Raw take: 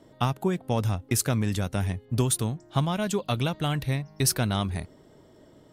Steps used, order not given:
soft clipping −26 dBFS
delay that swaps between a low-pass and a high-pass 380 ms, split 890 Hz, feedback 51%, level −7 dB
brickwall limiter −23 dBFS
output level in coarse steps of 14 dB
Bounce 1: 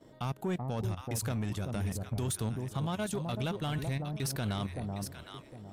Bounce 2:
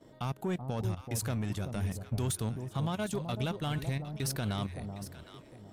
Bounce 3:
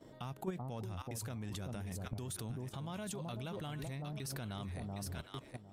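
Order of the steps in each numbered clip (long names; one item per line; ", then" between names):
output level in coarse steps, then delay that swaps between a low-pass and a high-pass, then brickwall limiter, then soft clipping
output level in coarse steps, then brickwall limiter, then soft clipping, then delay that swaps between a low-pass and a high-pass
delay that swaps between a low-pass and a high-pass, then brickwall limiter, then output level in coarse steps, then soft clipping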